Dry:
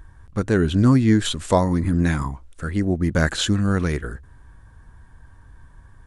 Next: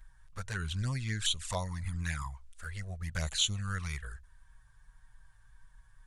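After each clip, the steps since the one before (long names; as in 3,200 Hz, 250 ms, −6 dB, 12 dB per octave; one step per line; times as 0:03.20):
guitar amp tone stack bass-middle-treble 10-0-10
flanger swept by the level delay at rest 8.5 ms, full sweep at −26 dBFS
level −1.5 dB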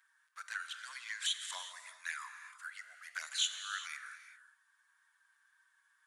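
four-pole ladder high-pass 1,100 Hz, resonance 35%
reverb whose tail is shaped and stops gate 420 ms flat, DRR 7.5 dB
level +3 dB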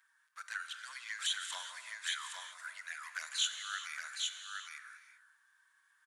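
single-tap delay 816 ms −4 dB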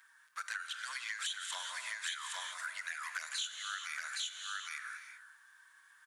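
downward compressor 5 to 1, threshold −46 dBFS, peak gain reduction 16 dB
level +8.5 dB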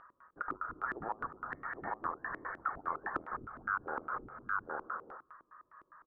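voice inversion scrambler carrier 2,800 Hz
auto-filter low-pass square 4.9 Hz 340–1,600 Hz
level +1.5 dB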